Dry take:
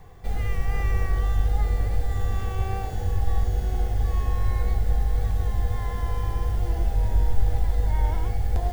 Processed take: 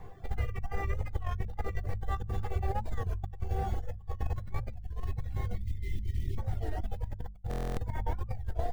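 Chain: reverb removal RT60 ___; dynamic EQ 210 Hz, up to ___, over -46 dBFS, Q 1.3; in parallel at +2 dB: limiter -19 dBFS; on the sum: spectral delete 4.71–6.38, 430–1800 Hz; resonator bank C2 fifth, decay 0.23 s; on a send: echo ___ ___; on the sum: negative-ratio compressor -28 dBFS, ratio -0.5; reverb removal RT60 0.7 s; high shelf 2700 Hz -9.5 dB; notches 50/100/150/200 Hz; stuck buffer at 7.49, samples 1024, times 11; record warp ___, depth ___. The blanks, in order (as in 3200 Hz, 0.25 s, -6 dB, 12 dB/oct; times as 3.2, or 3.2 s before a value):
1.4 s, -5 dB, 0.858 s, -3.5 dB, 33 1/3 rpm, 160 cents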